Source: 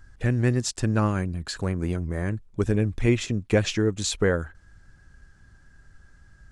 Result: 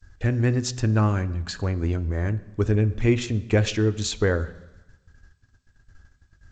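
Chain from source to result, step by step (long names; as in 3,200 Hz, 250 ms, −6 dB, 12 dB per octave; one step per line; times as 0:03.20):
noise gate −49 dBFS, range −35 dB
on a send at −11.5 dB: convolution reverb RT60 1.1 s, pre-delay 3 ms
on the sum: G.722 64 kbit/s 16,000 Hz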